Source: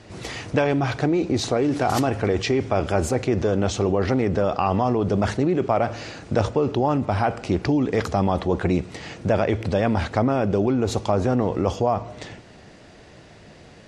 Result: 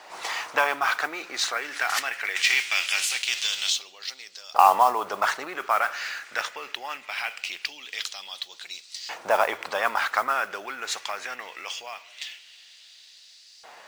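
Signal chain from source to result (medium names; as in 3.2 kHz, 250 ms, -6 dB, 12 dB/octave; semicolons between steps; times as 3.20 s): 2.35–3.71 s: formants flattened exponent 0.6; LFO high-pass saw up 0.22 Hz 860–4800 Hz; modulation noise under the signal 22 dB; trim +2 dB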